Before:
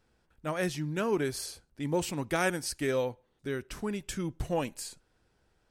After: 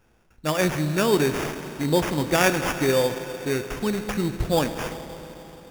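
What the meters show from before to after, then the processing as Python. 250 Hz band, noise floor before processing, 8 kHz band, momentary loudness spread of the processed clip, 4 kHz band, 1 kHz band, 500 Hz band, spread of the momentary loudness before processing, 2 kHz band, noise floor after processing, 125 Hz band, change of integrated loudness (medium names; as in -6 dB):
+9.0 dB, -73 dBFS, +7.0 dB, 12 LU, +10.5 dB, +9.5 dB, +9.0 dB, 10 LU, +9.0 dB, -60 dBFS, +9.5 dB, +9.0 dB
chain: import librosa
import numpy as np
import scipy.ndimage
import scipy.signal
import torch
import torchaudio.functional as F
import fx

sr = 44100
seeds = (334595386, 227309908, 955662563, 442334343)

y = fx.rev_schroeder(x, sr, rt60_s=3.9, comb_ms=26, drr_db=8.0)
y = fx.sample_hold(y, sr, seeds[0], rate_hz=4100.0, jitter_pct=0)
y = y * librosa.db_to_amplitude(8.5)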